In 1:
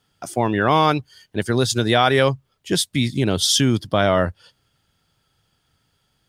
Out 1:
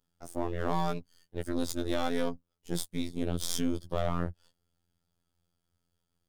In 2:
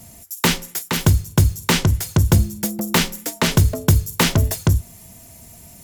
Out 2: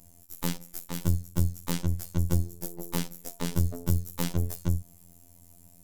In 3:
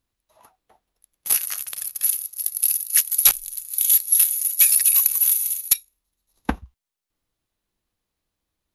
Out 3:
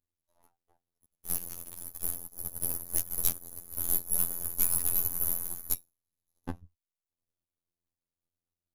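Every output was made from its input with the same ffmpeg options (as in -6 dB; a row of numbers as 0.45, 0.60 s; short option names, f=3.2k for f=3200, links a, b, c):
-af "aeval=exprs='if(lt(val(0),0),0.251*val(0),val(0))':c=same,equalizer=f=2.3k:w=0.44:g=-9.5,afftfilt=real='hypot(re,im)*cos(PI*b)':imag='0':win_size=2048:overlap=0.75,volume=-5dB"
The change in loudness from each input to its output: -15.0, -12.5, -13.0 LU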